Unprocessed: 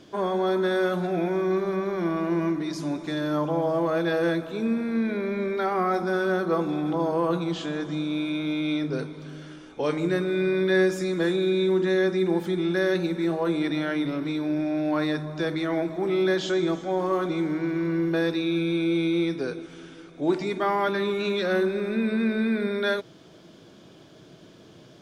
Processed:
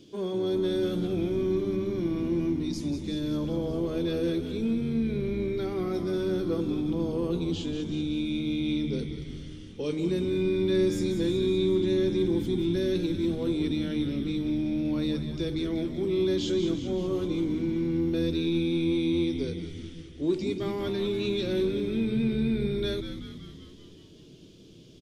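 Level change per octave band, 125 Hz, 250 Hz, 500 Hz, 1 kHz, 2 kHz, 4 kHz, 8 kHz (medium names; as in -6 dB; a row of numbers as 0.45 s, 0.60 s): +0.5 dB, -1.5 dB, -3.5 dB, -16.0 dB, -12.5 dB, -1.5 dB, no reading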